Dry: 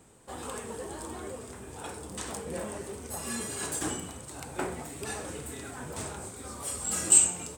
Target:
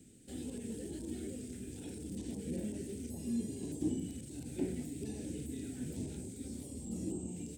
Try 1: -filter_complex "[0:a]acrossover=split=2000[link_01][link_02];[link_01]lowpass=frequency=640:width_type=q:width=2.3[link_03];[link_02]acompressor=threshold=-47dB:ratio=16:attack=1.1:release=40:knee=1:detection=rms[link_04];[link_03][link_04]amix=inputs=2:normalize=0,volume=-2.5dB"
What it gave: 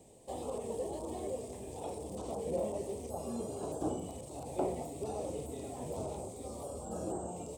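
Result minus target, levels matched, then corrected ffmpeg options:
500 Hz band +7.5 dB
-filter_complex "[0:a]acrossover=split=2000[link_01][link_02];[link_01]lowpass=frequency=270:width_type=q:width=2.3[link_03];[link_02]acompressor=threshold=-47dB:ratio=16:attack=1.1:release=40:knee=1:detection=rms[link_04];[link_03][link_04]amix=inputs=2:normalize=0,volume=-2.5dB"

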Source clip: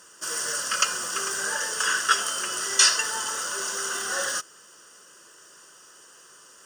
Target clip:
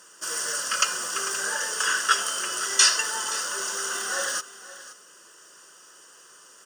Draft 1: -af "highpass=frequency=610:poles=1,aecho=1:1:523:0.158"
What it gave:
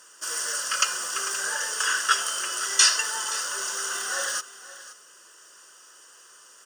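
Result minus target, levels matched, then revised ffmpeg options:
250 Hz band −5.0 dB
-af "highpass=frequency=190:poles=1,aecho=1:1:523:0.158"

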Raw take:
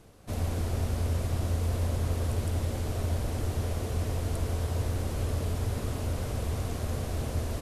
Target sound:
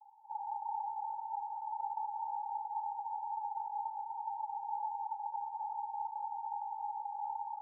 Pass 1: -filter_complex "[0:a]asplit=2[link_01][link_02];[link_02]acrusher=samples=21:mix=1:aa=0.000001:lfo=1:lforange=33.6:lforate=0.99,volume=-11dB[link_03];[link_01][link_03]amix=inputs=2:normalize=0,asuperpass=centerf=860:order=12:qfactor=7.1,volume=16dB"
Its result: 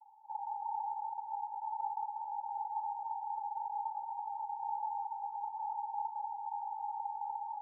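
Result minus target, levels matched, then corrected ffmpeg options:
sample-and-hold swept by an LFO: distortion −6 dB
-filter_complex "[0:a]asplit=2[link_01][link_02];[link_02]acrusher=samples=61:mix=1:aa=0.000001:lfo=1:lforange=97.6:lforate=0.99,volume=-11dB[link_03];[link_01][link_03]amix=inputs=2:normalize=0,asuperpass=centerf=860:order=12:qfactor=7.1,volume=16dB"

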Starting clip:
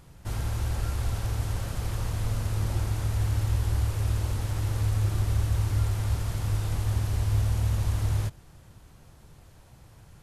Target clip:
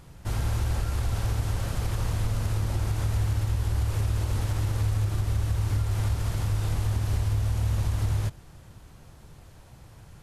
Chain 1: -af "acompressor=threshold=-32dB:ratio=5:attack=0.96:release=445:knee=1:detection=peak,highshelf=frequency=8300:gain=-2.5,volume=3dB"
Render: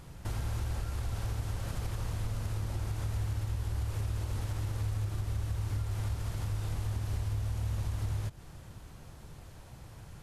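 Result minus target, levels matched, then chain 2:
downward compressor: peak gain reduction +7.5 dB
-af "acompressor=threshold=-22.5dB:ratio=5:attack=0.96:release=445:knee=1:detection=peak,highshelf=frequency=8300:gain=-2.5,volume=3dB"

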